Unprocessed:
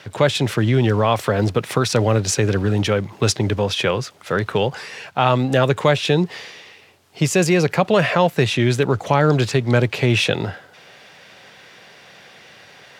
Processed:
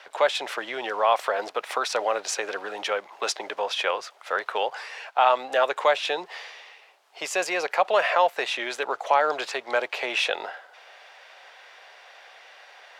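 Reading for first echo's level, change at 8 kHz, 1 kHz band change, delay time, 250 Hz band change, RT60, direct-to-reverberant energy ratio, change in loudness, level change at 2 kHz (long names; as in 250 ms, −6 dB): no echo audible, −8.0 dB, −1.0 dB, no echo audible, −22.5 dB, no reverb audible, no reverb audible, −7.0 dB, −3.5 dB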